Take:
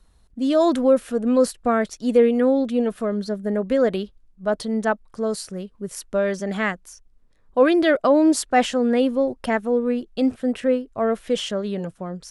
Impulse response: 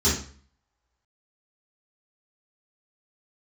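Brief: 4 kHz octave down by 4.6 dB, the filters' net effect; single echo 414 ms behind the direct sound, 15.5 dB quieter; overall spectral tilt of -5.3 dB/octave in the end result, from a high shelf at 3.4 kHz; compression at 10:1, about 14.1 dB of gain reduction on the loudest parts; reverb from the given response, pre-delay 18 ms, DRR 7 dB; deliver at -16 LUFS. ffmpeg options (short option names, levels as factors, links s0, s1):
-filter_complex "[0:a]highshelf=f=3400:g=-3.5,equalizer=f=4000:t=o:g=-4,acompressor=threshold=0.0501:ratio=10,aecho=1:1:414:0.168,asplit=2[s0][s1];[1:a]atrim=start_sample=2205,adelay=18[s2];[s1][s2]afir=irnorm=-1:irlink=0,volume=0.0841[s3];[s0][s3]amix=inputs=2:normalize=0,volume=3.98"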